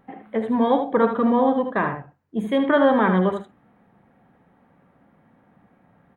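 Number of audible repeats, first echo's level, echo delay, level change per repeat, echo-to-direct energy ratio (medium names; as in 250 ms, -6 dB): 1, -7.5 dB, 76 ms, no regular repeats, -7.5 dB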